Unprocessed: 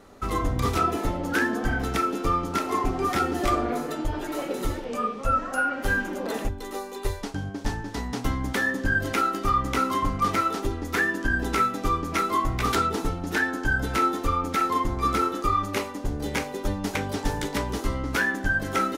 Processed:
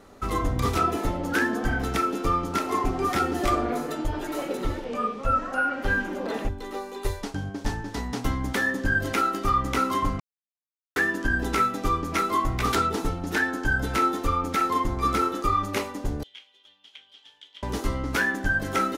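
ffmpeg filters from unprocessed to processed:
ffmpeg -i in.wav -filter_complex "[0:a]asettb=1/sr,asplit=3[link_01][link_02][link_03];[link_01]atrim=end=4.574[link_04];[link_02]atrim=start=4.57:end=7.01,asetpts=PTS-STARTPTS,afade=type=in:duration=0.004:curve=qsin,afade=type=out:start_time=2.436:duration=0.004:curve=qsin,acrossover=split=4800[link_05][link_06];[link_06]acompressor=threshold=-54dB:ratio=4:attack=1:release=60[link_07];[link_05][link_07]amix=inputs=2:normalize=0[link_08];[link_03]atrim=start=7.006[link_09];[link_04][link_08]acrossfade=duration=0.004:curve1=hsin:curve2=qsin[link_10];[link_10][link_09]acrossfade=duration=0.004:curve1=qsin:curve2=hsin,asettb=1/sr,asplit=3[link_11][link_12][link_13];[link_11]atrim=end=16.234[link_14];[link_12]atrim=start=16.23:end=17.63,asetpts=PTS-STARTPTS,afade=type=in:duration=0.004:curve=qsin,afade=type=out:start_time=1.396:duration=0.004:curve=qsin,bandpass=frequency=3200:width_type=q:width=14[link_15];[link_13]atrim=start=17.626[link_16];[link_14][link_15]acrossfade=duration=0.004:curve1=hsin:curve2=qsin[link_17];[link_17][link_16]acrossfade=duration=0.004:curve1=qsin:curve2=hsin,asplit=3[link_18][link_19][link_20];[link_18]atrim=end=10.2,asetpts=PTS-STARTPTS,afade=type=out:start_time=10.196:duration=0.004:curve=hsin[link_21];[link_19]atrim=start=10.2:end=10.96,asetpts=PTS-STARTPTS,volume=0[link_22];[link_20]atrim=start=10.96,asetpts=PTS-STARTPTS,afade=type=in:duration=0.004:curve=hsin[link_23];[link_21][link_22][link_23]concat=n=3:v=0:a=1" out.wav

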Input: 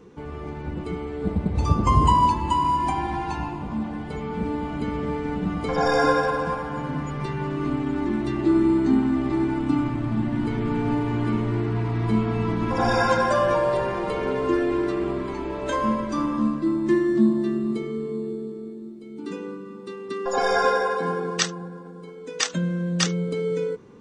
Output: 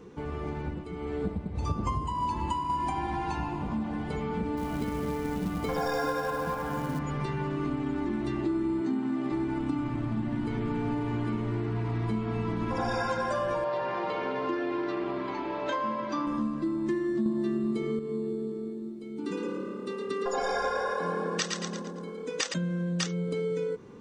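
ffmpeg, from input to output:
ffmpeg -i in.wav -filter_complex "[0:a]asettb=1/sr,asplit=3[link_01][link_02][link_03];[link_01]atrim=end=0.574[link_04];[link_02]atrim=start=0.57:end=2.7,asetpts=PTS-STARTPTS,afade=type=in:duration=0.004:curve=qsin,afade=type=out:start_time=2.126:duration=0.004:curve=qsin,tremolo=f=1.6:d=0.67[link_05];[link_03]atrim=start=2.696[link_06];[link_04][link_05]acrossfade=duration=0.004:curve1=hsin:curve2=qsin[link_07];[link_07][link_06]acrossfade=duration=0.004:curve1=qsin:curve2=hsin,asettb=1/sr,asplit=3[link_08][link_09][link_10];[link_08]atrim=end=4.574[link_11];[link_09]atrim=start=4.57:end=6.99,asetpts=PTS-STARTPTS,afade=type=in:duration=0.004:curve=qsin,afade=type=out:start_time=2.416:duration=0.004:curve=qsin,acrusher=bits=5:mode=log:mix=0:aa=0.000001[link_12];[link_10]atrim=start=6.986[link_13];[link_11][link_12]acrossfade=duration=0.004:curve1=hsin:curve2=qsin[link_14];[link_14][link_13]acrossfade=duration=0.004:curve1=qsin:curve2=hsin,asettb=1/sr,asplit=3[link_15][link_16][link_17];[link_15]atrim=end=8.814[link_18];[link_16]atrim=start=8.81:end=9.32,asetpts=PTS-STARTPTS,afade=type=in:duration=0.004:curve=qsin,afade=type=out:start_time=0.506:duration=0.004:curve=qsin,highpass=frequency=140:width=0.5412,highpass=frequency=140:width=1.3066[link_19];[link_17]atrim=start=9.316[link_20];[link_18][link_19]acrossfade=duration=0.004:curve1=hsin:curve2=qsin[link_21];[link_21][link_20]acrossfade=duration=0.004:curve1=qsin:curve2=hsin,asettb=1/sr,asplit=3[link_22][link_23][link_24];[link_22]atrim=end=13.644[link_25];[link_23]atrim=start=13.64:end=16.27,asetpts=PTS-STARTPTS,afade=type=in:duration=0.004:curve=qsin,afade=type=out:start_time=2.626:duration=0.004:curve=qsin,highpass=190,equalizer=frequency=210:width_type=q:width=4:gain=-6,equalizer=frequency=410:width_type=q:width=4:gain=-8,equalizer=frequency=850:width_type=q:width=4:gain=3,lowpass=frequency=5300:width=0.5412,lowpass=frequency=5300:width=1.3066[link_26];[link_24]atrim=start=16.266[link_27];[link_25][link_26]acrossfade=duration=0.004:curve1=hsin:curve2=qsin[link_28];[link_28][link_27]acrossfade=duration=0.004:curve1=qsin:curve2=hsin,asettb=1/sr,asplit=3[link_29][link_30][link_31];[link_29]atrim=end=19.164[link_32];[link_30]atrim=start=19.16:end=22.54,asetpts=PTS-STARTPTS,afade=type=in:duration=0.004:curve=qsin,afade=type=out:start_time=3.376:duration=0.004:curve=qsin,asplit=6[link_33][link_34][link_35][link_36][link_37][link_38];[link_34]adelay=113,afreqshift=36,volume=-5dB[link_39];[link_35]adelay=226,afreqshift=72,volume=-13.4dB[link_40];[link_36]adelay=339,afreqshift=108,volume=-21.8dB[link_41];[link_37]adelay=452,afreqshift=144,volume=-30.2dB[link_42];[link_38]adelay=565,afreqshift=180,volume=-38.6dB[link_43];[link_33][link_39][link_40][link_41][link_42][link_43]amix=inputs=6:normalize=0,atrim=end_sample=149058[link_44];[link_31]atrim=start=22.536[link_45];[link_32][link_44]acrossfade=duration=0.004:curve1=hsin:curve2=qsin[link_46];[link_46][link_45]acrossfade=duration=0.004:curve1=qsin:curve2=hsin,asplit=3[link_47][link_48][link_49];[link_47]atrim=end=17.262[link_50];[link_48]atrim=start=17.258:end=17.992,asetpts=PTS-STARTPTS,volume=7dB[link_51];[link_49]atrim=start=17.988[link_52];[link_50][link_51]acrossfade=duration=0.004:curve1=hsin:curve2=hsin[link_53];[link_53][link_52]acrossfade=duration=0.004:curve1=hsin:curve2=hsin,acompressor=threshold=-28dB:ratio=4" out.wav

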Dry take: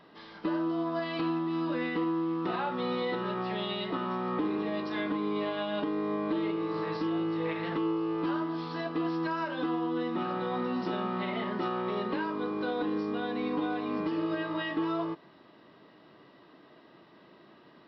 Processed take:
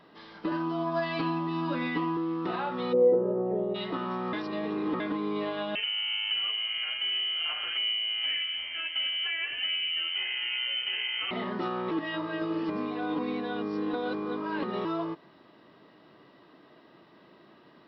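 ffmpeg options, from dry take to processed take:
ffmpeg -i in.wav -filter_complex "[0:a]asettb=1/sr,asplit=3[link_01][link_02][link_03];[link_01]atrim=end=0.514[link_04];[link_02]atrim=start=0.51:end=2.17,asetpts=PTS-STARTPTS,afade=type=in:duration=0.004:curve=qsin,afade=type=out:start_time=1.656:duration=0.004:curve=qsin,aecho=1:1:7.2:1,atrim=end_sample=73206[link_05];[link_03]atrim=start=2.166[link_06];[link_04][link_05]acrossfade=duration=0.004:curve1=hsin:curve2=qsin[link_07];[link_07][link_06]acrossfade=duration=0.004:curve1=qsin:curve2=hsin,asplit=3[link_08][link_09][link_10];[link_08]afade=type=out:start_time=2.92:duration=0.02[link_11];[link_09]lowpass=frequency=500:width_type=q:width=4.7,afade=type=in:start_time=2.92:duration=0.02,afade=type=out:start_time=3.74:duration=0.02[link_12];[link_10]afade=type=in:start_time=3.74:duration=0.02[link_13];[link_11][link_12][link_13]amix=inputs=3:normalize=0,asettb=1/sr,asplit=3[link_14][link_15][link_16];[link_14]atrim=end=5.754[link_17];[link_15]atrim=start=5.75:end=11.31,asetpts=PTS-STARTPTS,afade=type=in:duration=0.004:curve=qsin,afade=type=out:start_time=5.556:duration=0.004:curve=qsin,lowpass=frequency=2800:width_type=q:width=0.5098,lowpass=frequency=2800:width_type=q:width=0.6013,lowpass=frequency=2800:width_type=q:width=0.9,lowpass=frequency=2800:width_type=q:width=2.563,afreqshift=-3300[link_18];[link_16]atrim=start=11.306[link_19];[link_17][link_18]acrossfade=duration=0.004:curve1=hsin:curve2=qsin[link_20];[link_20][link_19]acrossfade=duration=0.004:curve1=qsin:curve2=hsin,asplit=5[link_21][link_22][link_23][link_24][link_25];[link_21]atrim=end=4.332[link_26];[link_22]atrim=start=4.328:end=5.002,asetpts=PTS-STARTPTS,areverse[link_27];[link_23]atrim=start=4.998:end=11.912[link_28];[link_24]atrim=start=11.908:end=14.852,asetpts=PTS-STARTPTS,areverse[link_29];[link_25]atrim=start=14.848[link_30];[link_26][link_27]acrossfade=duration=0.004:curve1=hsin:curve2=hsin[link_31];[link_31][link_28]acrossfade=duration=0.004:curve1=hsin:curve2=hsin[link_32];[link_32][link_29]acrossfade=duration=0.004:curve1=hsin:curve2=hsin[link_33];[link_33][link_30]acrossfade=duration=0.004:curve1=hsin:curve2=hsin" out.wav

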